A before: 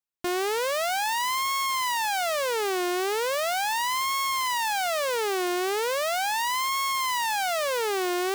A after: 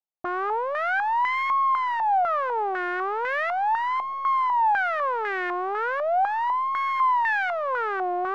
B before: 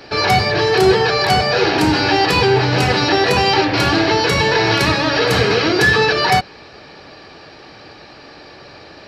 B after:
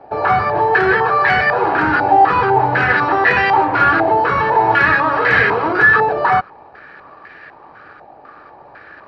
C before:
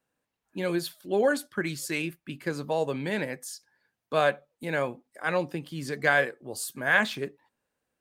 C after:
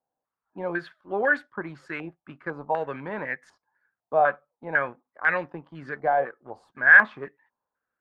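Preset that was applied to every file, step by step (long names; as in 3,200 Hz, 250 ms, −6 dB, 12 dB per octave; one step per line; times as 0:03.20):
tilt shelving filter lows −4 dB, about 820 Hz
leveller curve on the samples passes 1
low-pass on a step sequencer 4 Hz 780–1,800 Hz
level −6 dB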